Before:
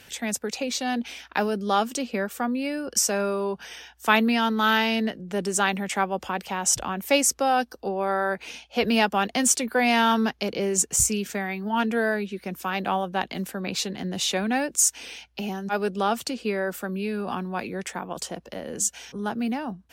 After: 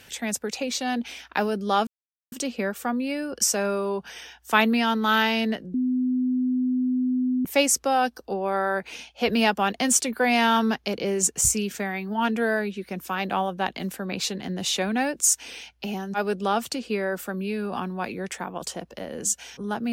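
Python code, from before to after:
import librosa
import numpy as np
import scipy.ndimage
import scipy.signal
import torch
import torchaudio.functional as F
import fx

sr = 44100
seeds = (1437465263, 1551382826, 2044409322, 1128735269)

y = fx.edit(x, sr, fx.insert_silence(at_s=1.87, length_s=0.45),
    fx.bleep(start_s=5.29, length_s=1.71, hz=253.0, db=-20.5), tone=tone)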